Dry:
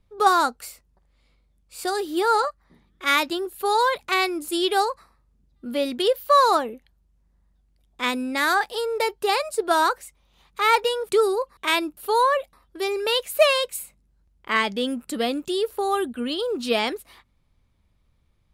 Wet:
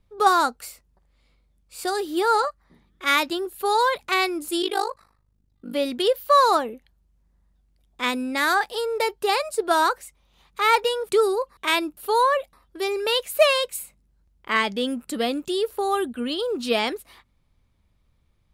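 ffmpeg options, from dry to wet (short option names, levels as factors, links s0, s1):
-filter_complex "[0:a]asettb=1/sr,asplit=3[s0][s1][s2];[s0]atrim=end=4.624[s3];[s1]atrim=start=4.62:end=5.74,asetpts=PTS-STARTPTS,afade=t=in:d=0.004:c=qsin,afade=t=out:st=1.116:d=0.004:c=qsin,tremolo=f=51:d=0.889[s4];[s2]atrim=start=5.736[s5];[s3][s4]acrossfade=d=0.004:c1=hsin:c2=qsin[s6];[s6][s5]acrossfade=d=0.004:c1=qsin:c2=hsin"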